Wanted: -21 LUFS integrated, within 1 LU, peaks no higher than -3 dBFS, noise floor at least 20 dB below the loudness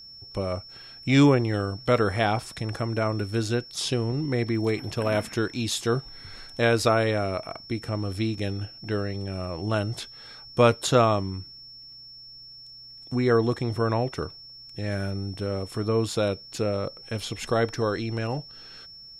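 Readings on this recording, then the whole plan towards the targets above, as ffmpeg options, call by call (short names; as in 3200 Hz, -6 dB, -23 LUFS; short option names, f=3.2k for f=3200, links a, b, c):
steady tone 5400 Hz; tone level -43 dBFS; loudness -26.5 LUFS; peak -6.0 dBFS; loudness target -21.0 LUFS
-> -af "bandreject=f=5.4k:w=30"
-af "volume=5.5dB,alimiter=limit=-3dB:level=0:latency=1"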